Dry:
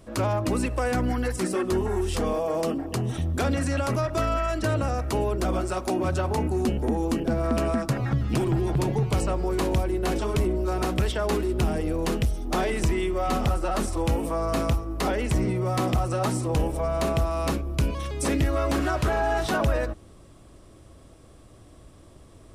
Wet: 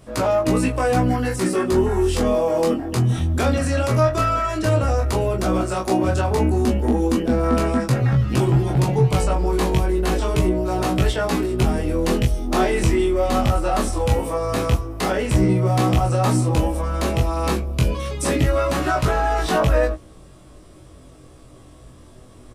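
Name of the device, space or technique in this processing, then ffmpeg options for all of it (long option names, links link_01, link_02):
double-tracked vocal: -filter_complex "[0:a]asplit=2[link_01][link_02];[link_02]adelay=16,volume=-5dB[link_03];[link_01][link_03]amix=inputs=2:normalize=0,flanger=delay=22.5:depth=3.6:speed=0.1,volume=7dB"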